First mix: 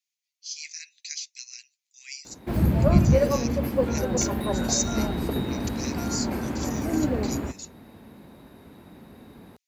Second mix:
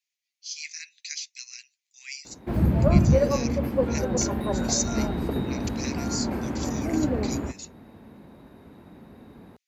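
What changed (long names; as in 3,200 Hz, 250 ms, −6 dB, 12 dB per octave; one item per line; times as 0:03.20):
speech +6.5 dB
master: add high-shelf EQ 3,300 Hz −9 dB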